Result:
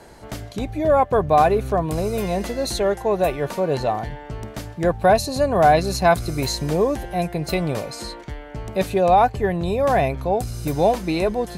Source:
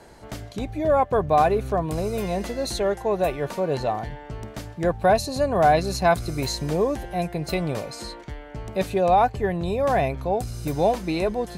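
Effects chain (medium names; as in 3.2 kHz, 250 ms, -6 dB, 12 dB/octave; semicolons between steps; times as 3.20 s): peaking EQ 12 kHz +2.5 dB 0.53 oct; trim +3 dB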